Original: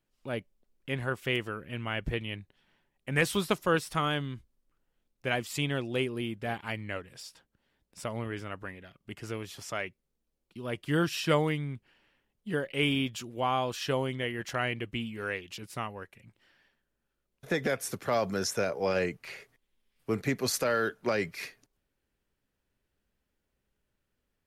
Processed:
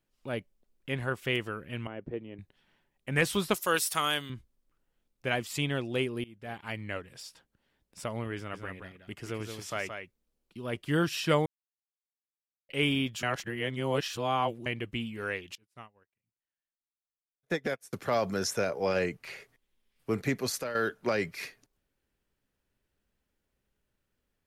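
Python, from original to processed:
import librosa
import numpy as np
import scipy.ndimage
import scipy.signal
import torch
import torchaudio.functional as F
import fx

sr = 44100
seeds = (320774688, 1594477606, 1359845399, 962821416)

y = fx.bandpass_q(x, sr, hz=360.0, q=1.2, at=(1.87, 2.39))
y = fx.riaa(y, sr, side='recording', at=(3.54, 4.3))
y = fx.echo_single(y, sr, ms=173, db=-6.5, at=(8.36, 10.77))
y = fx.upward_expand(y, sr, threshold_db=-48.0, expansion=2.5, at=(15.55, 17.93))
y = fx.edit(y, sr, fx.fade_in_from(start_s=6.24, length_s=0.6, floor_db=-22.0),
    fx.silence(start_s=11.46, length_s=1.23),
    fx.reverse_span(start_s=13.23, length_s=1.43),
    fx.fade_out_to(start_s=20.34, length_s=0.41, floor_db=-10.5), tone=tone)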